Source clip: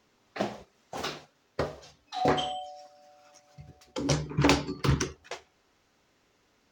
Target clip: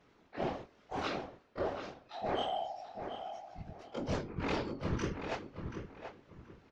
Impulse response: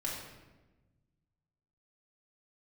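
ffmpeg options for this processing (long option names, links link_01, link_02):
-filter_complex "[0:a]afftfilt=real='re':imag='-im':win_size=2048:overlap=0.75,afftfilt=real='hypot(re,im)*cos(2*PI*random(0))':imag='hypot(re,im)*sin(2*PI*random(1))':win_size=512:overlap=0.75,aemphasis=mode=reproduction:type=50fm,areverse,acompressor=threshold=-45dB:ratio=8,areverse,highshelf=frequency=6800:gain=-11.5,asplit=2[link_01][link_02];[link_02]adelay=731,lowpass=frequency=2300:poles=1,volume=-7dB,asplit=2[link_03][link_04];[link_04]adelay=731,lowpass=frequency=2300:poles=1,volume=0.26,asplit=2[link_05][link_06];[link_06]adelay=731,lowpass=frequency=2300:poles=1,volume=0.26[link_07];[link_03][link_05][link_07]amix=inputs=3:normalize=0[link_08];[link_01][link_08]amix=inputs=2:normalize=0,volume=13dB"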